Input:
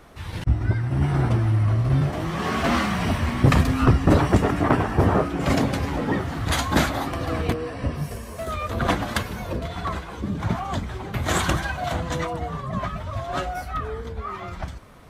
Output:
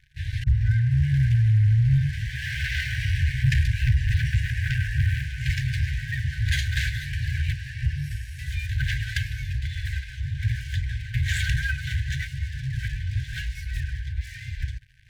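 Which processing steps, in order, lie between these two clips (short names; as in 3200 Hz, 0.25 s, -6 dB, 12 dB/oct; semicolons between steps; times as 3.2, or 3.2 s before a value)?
LPF 2100 Hz 6 dB/oct; sample leveller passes 3; FFT band-reject 140–1500 Hz; gain -6.5 dB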